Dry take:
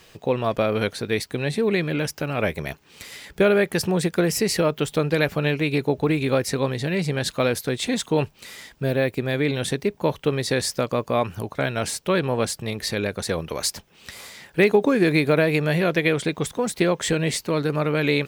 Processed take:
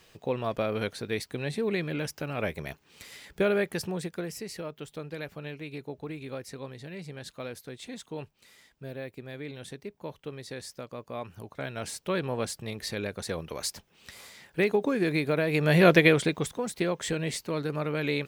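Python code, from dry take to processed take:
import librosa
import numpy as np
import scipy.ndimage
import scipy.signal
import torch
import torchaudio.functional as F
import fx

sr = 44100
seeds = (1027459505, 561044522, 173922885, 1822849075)

y = fx.gain(x, sr, db=fx.line((3.61, -7.5), (4.46, -17.0), (10.93, -17.0), (12.12, -8.0), (15.44, -8.0), (15.88, 4.0), (16.63, -8.0)))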